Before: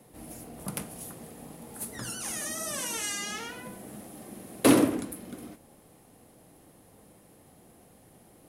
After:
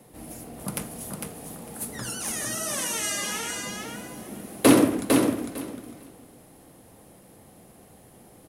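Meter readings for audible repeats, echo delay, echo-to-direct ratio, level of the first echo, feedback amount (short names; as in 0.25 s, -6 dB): 2, 0.453 s, -4.5 dB, -4.5 dB, 17%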